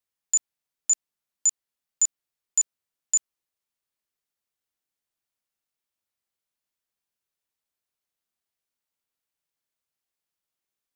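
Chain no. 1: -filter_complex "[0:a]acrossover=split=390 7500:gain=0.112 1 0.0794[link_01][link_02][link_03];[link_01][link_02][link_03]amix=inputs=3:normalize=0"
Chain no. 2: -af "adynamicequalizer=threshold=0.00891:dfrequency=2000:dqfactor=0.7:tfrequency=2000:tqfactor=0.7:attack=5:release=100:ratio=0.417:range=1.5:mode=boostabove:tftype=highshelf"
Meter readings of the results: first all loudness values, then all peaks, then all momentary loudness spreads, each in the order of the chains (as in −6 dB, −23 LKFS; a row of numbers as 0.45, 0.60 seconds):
−29.0, −23.0 LKFS; −18.0, −12.0 dBFS; 1, 1 LU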